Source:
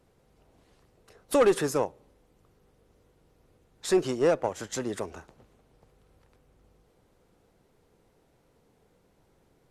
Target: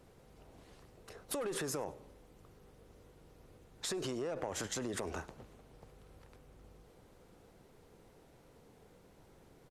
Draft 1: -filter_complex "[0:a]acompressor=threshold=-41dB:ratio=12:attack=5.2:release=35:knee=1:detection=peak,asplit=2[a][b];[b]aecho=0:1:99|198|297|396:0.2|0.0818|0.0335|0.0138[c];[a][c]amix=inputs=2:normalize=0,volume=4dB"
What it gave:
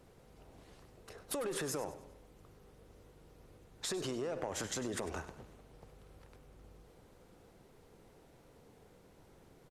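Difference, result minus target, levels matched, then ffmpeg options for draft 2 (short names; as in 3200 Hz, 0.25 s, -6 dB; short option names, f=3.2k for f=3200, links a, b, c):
echo-to-direct +11.5 dB
-filter_complex "[0:a]acompressor=threshold=-41dB:ratio=12:attack=5.2:release=35:knee=1:detection=peak,asplit=2[a][b];[b]aecho=0:1:99|198:0.0531|0.0218[c];[a][c]amix=inputs=2:normalize=0,volume=4dB"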